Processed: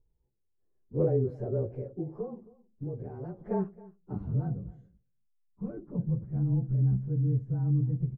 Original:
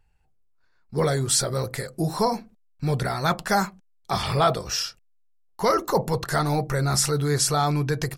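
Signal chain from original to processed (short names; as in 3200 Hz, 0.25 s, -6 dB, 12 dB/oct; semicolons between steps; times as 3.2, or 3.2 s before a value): inharmonic rescaling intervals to 108%; 1.88–3.41 compressor 6:1, threshold -32 dBFS, peak gain reduction 11.5 dB; low-pass sweep 410 Hz -> 200 Hz, 3.77–4.58; on a send: echo 0.269 s -21 dB; on the sum: gain -4 dB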